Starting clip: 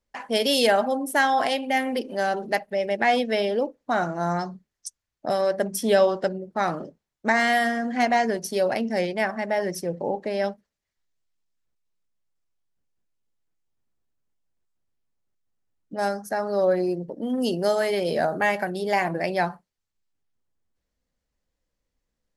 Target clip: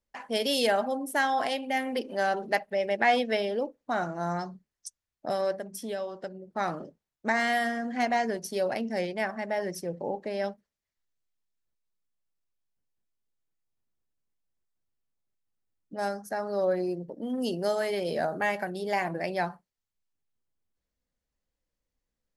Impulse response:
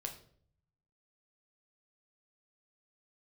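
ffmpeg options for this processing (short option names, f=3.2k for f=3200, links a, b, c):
-filter_complex "[0:a]asettb=1/sr,asplit=3[a][b][c];[a]atrim=end=1.954[d];[b]atrim=start=1.95:end=3.37,asetpts=PTS-STARTPTS,afade=t=in:d=0.004:c=qsin,afade=t=out:st=1.416:d=0.004:c=qsin,equalizer=f=1.5k:w=0.31:g=4[e];[c]atrim=start=3.366[f];[d][e]acrossfade=d=0.004:c1=hsin:c2=qsin[g];[g][f]acrossfade=d=0.004:c1=qsin:c2=hsin,asplit=3[h][i][j];[h]afade=t=out:st=5.57:d=0.02[k];[i]acompressor=threshold=-34dB:ratio=2,afade=t=in:st=5.57:d=0.02,afade=t=out:st=6.52:d=0.02[l];[j]afade=t=in:st=6.52:d=0.02[m];[k][l][m]amix=inputs=3:normalize=0,volume=-5.5dB"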